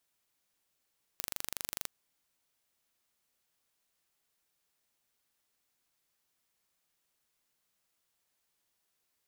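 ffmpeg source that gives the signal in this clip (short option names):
-f lavfi -i "aevalsrc='0.376*eq(mod(n,1800),0)':d=0.69:s=44100"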